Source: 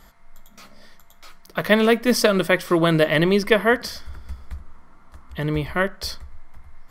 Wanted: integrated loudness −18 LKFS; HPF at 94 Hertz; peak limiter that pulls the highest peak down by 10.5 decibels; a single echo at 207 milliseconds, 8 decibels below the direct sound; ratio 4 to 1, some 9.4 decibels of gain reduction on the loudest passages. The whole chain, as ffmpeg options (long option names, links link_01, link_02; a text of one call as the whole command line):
ffmpeg -i in.wav -af "highpass=94,acompressor=threshold=-23dB:ratio=4,alimiter=limit=-18.5dB:level=0:latency=1,aecho=1:1:207:0.398,volume=11.5dB" out.wav